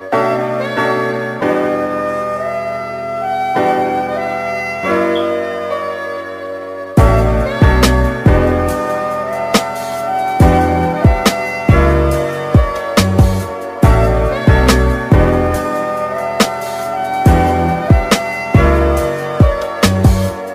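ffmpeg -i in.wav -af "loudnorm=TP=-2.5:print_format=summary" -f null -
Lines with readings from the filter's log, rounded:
Input Integrated:    -14.0 LUFS
Input True Peak:      -0.8 dBTP
Input LRA:             3.9 LU
Input Threshold:     -24.1 LUFS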